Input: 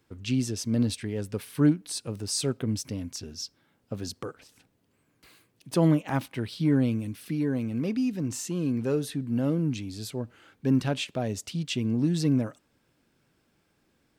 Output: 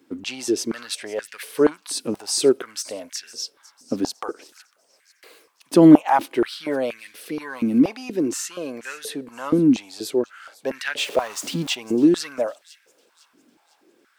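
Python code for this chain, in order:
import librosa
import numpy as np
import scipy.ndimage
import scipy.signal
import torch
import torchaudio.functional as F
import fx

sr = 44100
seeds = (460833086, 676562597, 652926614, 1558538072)

y = fx.zero_step(x, sr, step_db=-39.0, at=(10.98, 11.75))
y = fx.echo_wet_highpass(y, sr, ms=503, feedback_pct=44, hz=4300.0, wet_db=-17)
y = fx.filter_held_highpass(y, sr, hz=4.2, low_hz=270.0, high_hz=1800.0)
y = y * 10.0 ** (6.0 / 20.0)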